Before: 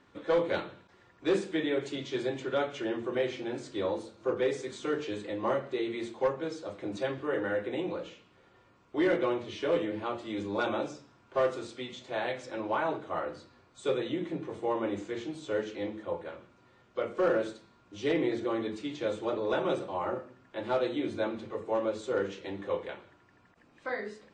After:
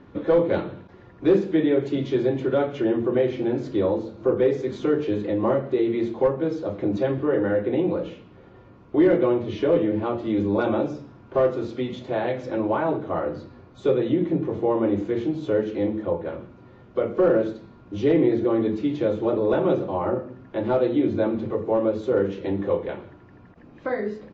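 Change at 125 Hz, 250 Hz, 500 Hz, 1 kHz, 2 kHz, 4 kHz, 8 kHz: +14.0 dB, +11.5 dB, +9.0 dB, +4.5 dB, +1.5 dB, -1.0 dB, no reading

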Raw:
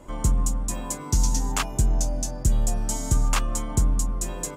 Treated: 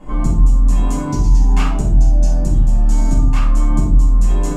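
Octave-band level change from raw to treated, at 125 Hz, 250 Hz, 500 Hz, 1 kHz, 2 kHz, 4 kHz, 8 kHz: +10.0 dB, +10.5 dB, +6.0 dB, +5.0 dB, +2.5 dB, -2.0 dB, -6.0 dB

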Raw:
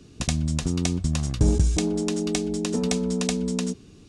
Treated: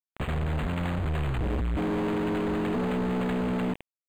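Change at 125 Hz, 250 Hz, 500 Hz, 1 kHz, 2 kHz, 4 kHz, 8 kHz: -4.5 dB, -3.5 dB, -2.0 dB, +5.0 dB, +1.5 dB, -10.5 dB, under -20 dB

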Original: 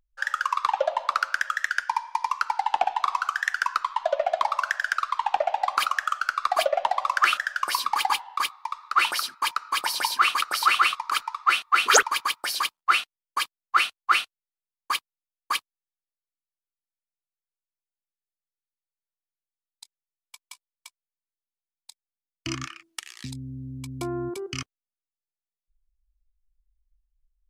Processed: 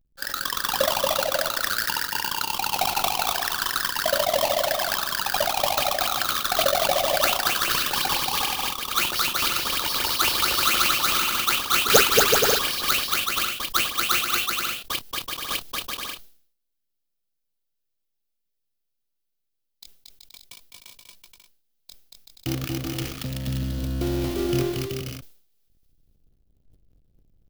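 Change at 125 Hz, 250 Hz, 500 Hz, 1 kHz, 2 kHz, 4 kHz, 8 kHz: no reading, +9.0 dB, +5.5 dB, -2.5 dB, -0.5 dB, +6.5 dB, +6.5 dB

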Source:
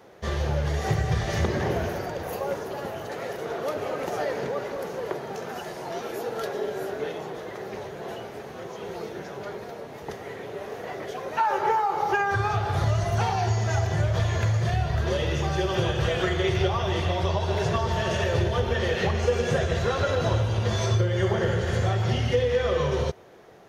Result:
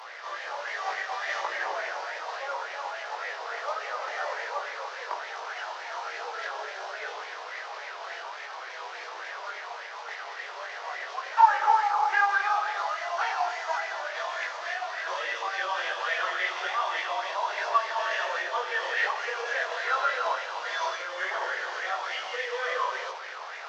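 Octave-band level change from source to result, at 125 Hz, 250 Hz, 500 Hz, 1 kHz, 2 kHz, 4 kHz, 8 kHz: under -40 dB, under -25 dB, -10.0 dB, +2.0 dB, +4.0 dB, -2.0 dB, -5.5 dB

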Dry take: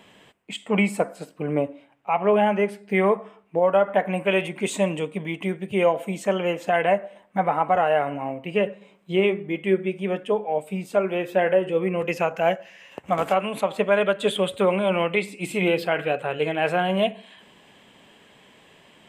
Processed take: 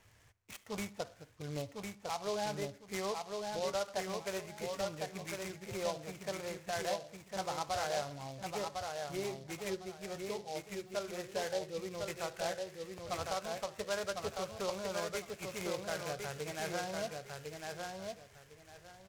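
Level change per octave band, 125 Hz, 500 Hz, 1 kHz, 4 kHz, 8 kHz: -15.0 dB, -16.5 dB, -15.5 dB, -9.0 dB, -2.0 dB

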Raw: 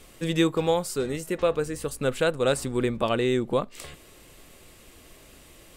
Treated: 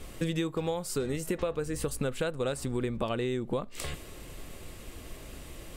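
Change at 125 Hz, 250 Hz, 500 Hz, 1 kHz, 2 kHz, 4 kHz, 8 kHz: -3.0 dB, -5.5 dB, -7.0 dB, -8.0 dB, -7.5 dB, -7.0 dB, -3.0 dB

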